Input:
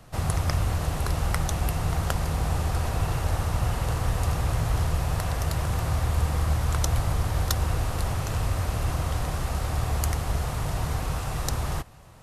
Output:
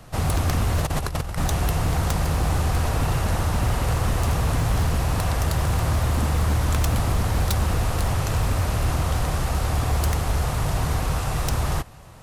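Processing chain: 0.78–1.39 s: compressor with a negative ratio -29 dBFS, ratio -0.5; wavefolder -20.5 dBFS; trim +5 dB

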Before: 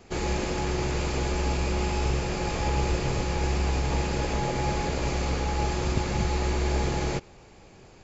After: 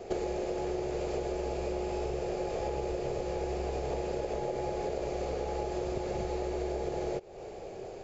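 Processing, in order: high-order bell 520 Hz +14 dB 1.3 oct; compression 16:1, threshold -30 dBFS, peak gain reduction 16.5 dB

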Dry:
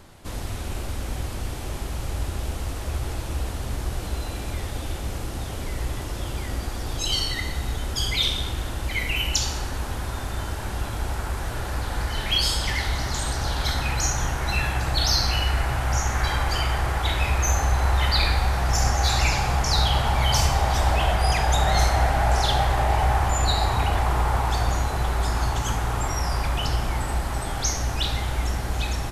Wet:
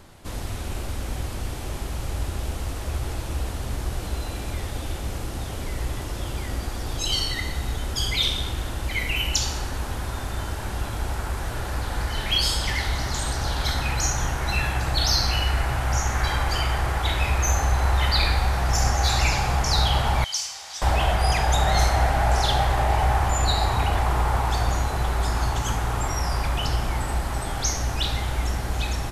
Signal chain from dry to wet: 20.24–20.82 s: band-pass filter 5.9 kHz, Q 1.4

